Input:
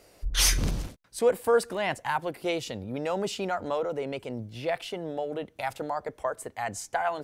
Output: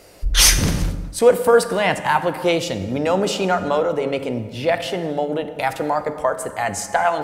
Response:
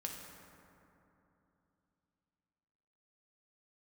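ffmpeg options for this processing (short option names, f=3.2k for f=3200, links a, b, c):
-filter_complex "[0:a]asplit=2[a][b];[1:a]atrim=start_sample=2205,afade=t=out:st=0.41:d=0.01,atrim=end_sample=18522[c];[b][c]afir=irnorm=-1:irlink=0,volume=0.5dB[d];[a][d]amix=inputs=2:normalize=0,volume=5.5dB"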